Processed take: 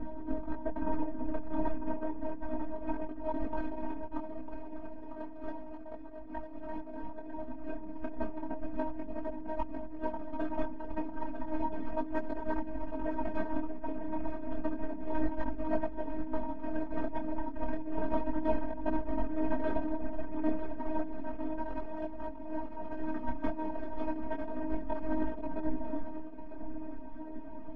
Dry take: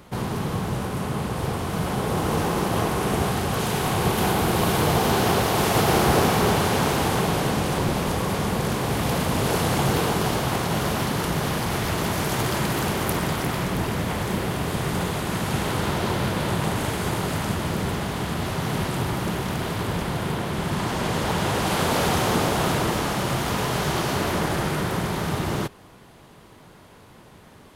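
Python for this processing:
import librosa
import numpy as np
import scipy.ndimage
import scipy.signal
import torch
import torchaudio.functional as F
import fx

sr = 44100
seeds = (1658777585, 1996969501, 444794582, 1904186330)

y = fx.lower_of_two(x, sr, delay_ms=4.3)
y = fx.peak_eq(y, sr, hz=180.0, db=6.0, octaves=0.58)
y = fx.hum_notches(y, sr, base_hz=60, count=5)
y = y + 10.0 ** (-9.5 / 20.0) * np.pad(y, (int(329 * sr / 1000.0), 0))[:len(y)]
y = fx.dereverb_blind(y, sr, rt60_s=1.6)
y = fx.robotise(y, sr, hz=312.0)
y = fx.tilt_shelf(y, sr, db=7.0, hz=800.0)
y = fx.over_compress(y, sr, threshold_db=-35.0, ratio=-0.5)
y = scipy.signal.sosfilt(scipy.signal.butter(2, 1100.0, 'lowpass', fs=sr, output='sos'), y)
y = y + 0.79 * np.pad(y, (int(4.4 * sr / 1000.0), 0))[:len(y)]
y = y + 10.0 ** (-8.5 / 20.0) * np.pad(y, (int(950 * sr / 1000.0), 0))[:len(y)]
y = fx.detune_double(y, sr, cents=11)
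y = y * 10.0 ** (3.0 / 20.0)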